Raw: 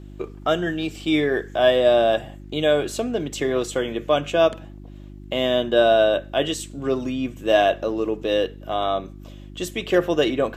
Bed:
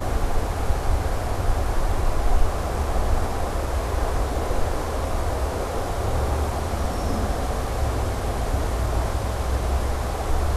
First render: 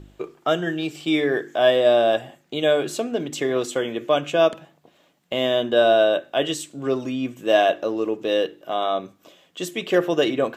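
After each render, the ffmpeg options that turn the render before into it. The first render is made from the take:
-af "bandreject=f=50:t=h:w=4,bandreject=f=100:t=h:w=4,bandreject=f=150:t=h:w=4,bandreject=f=200:t=h:w=4,bandreject=f=250:t=h:w=4,bandreject=f=300:t=h:w=4,bandreject=f=350:t=h:w=4"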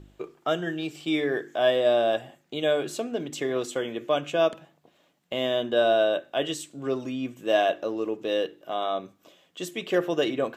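-af "volume=-5dB"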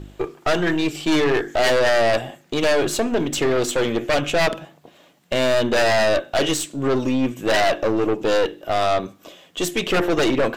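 -af "aeval=exprs='0.316*sin(PI/2*3.55*val(0)/0.316)':c=same,aeval=exprs='(tanh(5.01*val(0)+0.55)-tanh(0.55))/5.01':c=same"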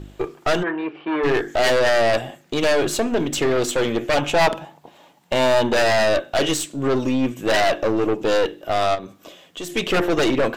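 -filter_complex "[0:a]asplit=3[a][b][c];[a]afade=t=out:st=0.62:d=0.02[d];[b]highpass=380,equalizer=f=650:t=q:w=4:g=-4,equalizer=f=1k:t=q:w=4:g=4,equalizer=f=2k:t=q:w=4:g=-4,lowpass=f=2.1k:w=0.5412,lowpass=f=2.1k:w=1.3066,afade=t=in:st=0.62:d=0.02,afade=t=out:st=1.23:d=0.02[e];[c]afade=t=in:st=1.23:d=0.02[f];[d][e][f]amix=inputs=3:normalize=0,asettb=1/sr,asplit=3[g][h][i];[g]atrim=end=4.174[j];[h]atrim=start=4.17:end=5.73,asetpts=PTS-STARTPTS,afade=t=in:d=0.004:c=qsin,afade=t=out:st=1.556:d=0.004:c=qsin,equalizer=f=880:w=4.4:g=12.5[k];[i]atrim=start=5.726[l];[j][k]acrossfade=d=0.004:c1=hsin:c2=qsin[m];[m][l]acrossfade=d=0.004:c1=qsin:c2=hsin,asplit=3[n][o][p];[n]afade=t=out:st=8.94:d=0.02[q];[o]acompressor=threshold=-33dB:ratio=2:attack=3.2:release=140:knee=1:detection=peak,afade=t=in:st=8.94:d=0.02,afade=t=out:st=9.69:d=0.02[r];[p]afade=t=in:st=9.69:d=0.02[s];[q][r][s]amix=inputs=3:normalize=0"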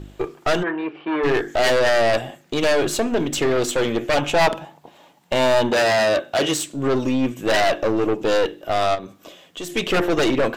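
-filter_complex "[0:a]asettb=1/sr,asplit=3[a][b][c];[a]atrim=end=5.714[d];[b]atrim=start=5.71:end=6.67,asetpts=PTS-STARTPTS,afade=t=in:d=0.004:c=qsin,afade=t=out:st=0.956:d=0.004:c=qsin,highpass=100[e];[c]atrim=start=6.666[f];[d][e]acrossfade=d=0.004:c1=hsin:c2=qsin[g];[g][f]acrossfade=d=0.004:c1=qsin:c2=hsin"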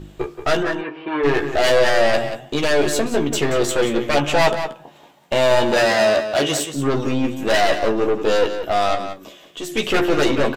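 -filter_complex "[0:a]asplit=2[a][b];[b]adelay=14,volume=-5.5dB[c];[a][c]amix=inputs=2:normalize=0,asplit=2[d][e];[e]adelay=180.8,volume=-9dB,highshelf=f=4k:g=-4.07[f];[d][f]amix=inputs=2:normalize=0"

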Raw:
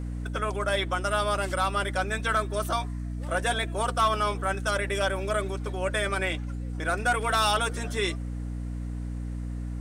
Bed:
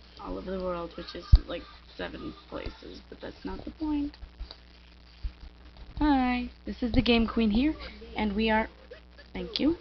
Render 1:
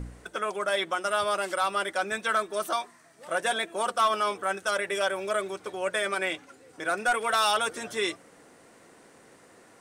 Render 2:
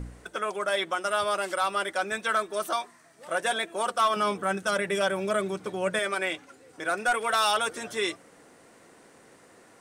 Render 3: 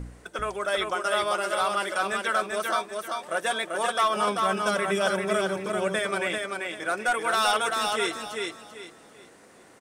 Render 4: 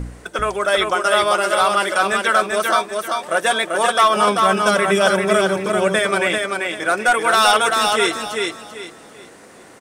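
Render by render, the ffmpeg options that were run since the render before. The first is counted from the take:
-af "bandreject=f=60:t=h:w=4,bandreject=f=120:t=h:w=4,bandreject=f=180:t=h:w=4,bandreject=f=240:t=h:w=4,bandreject=f=300:t=h:w=4"
-filter_complex "[0:a]asettb=1/sr,asplit=3[a][b][c];[a]atrim=end=4.164[d];[b]atrim=start=4.16:end=5.99,asetpts=PTS-STARTPTS,afade=t=in:d=0.004:c=qsin,afade=t=out:st=1.826:d=0.004:c=qsin,equalizer=f=170:w=1.1:g=13.5[e];[c]atrim=start=5.986[f];[d][e]acrossfade=d=0.004:c1=hsin:c2=qsin[g];[g][f]acrossfade=d=0.004:c1=qsin:c2=hsin"
-af "aecho=1:1:390|780|1170|1560:0.668|0.194|0.0562|0.0163"
-af "volume=9.5dB"

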